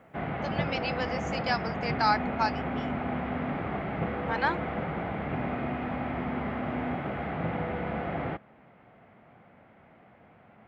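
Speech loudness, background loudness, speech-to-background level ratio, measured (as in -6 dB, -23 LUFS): -31.5 LUFS, -32.5 LUFS, 1.0 dB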